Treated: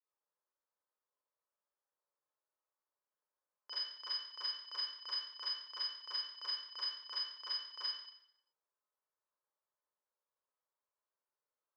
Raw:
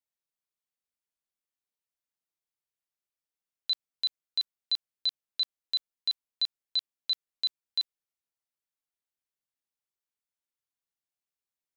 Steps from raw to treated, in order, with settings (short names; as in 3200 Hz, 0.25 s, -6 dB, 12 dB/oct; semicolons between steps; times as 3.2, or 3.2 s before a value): ring modulator 1000 Hz; steep high-pass 190 Hz; fixed phaser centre 740 Hz, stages 6; auto-wah 750–1700 Hz, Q 4.4, up, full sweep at -35.5 dBFS; reverb RT60 0.75 s, pre-delay 30 ms, DRR -11 dB; gain +11 dB